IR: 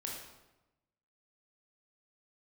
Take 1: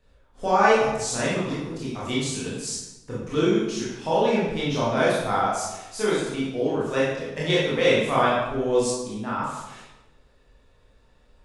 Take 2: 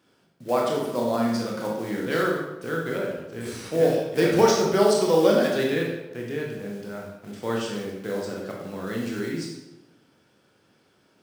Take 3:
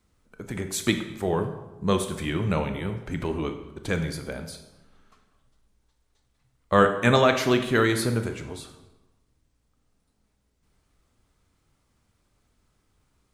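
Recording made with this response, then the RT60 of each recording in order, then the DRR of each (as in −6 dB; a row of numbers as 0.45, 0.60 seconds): 2; 1.0, 1.0, 1.0 seconds; −8.0, −2.0, 7.0 decibels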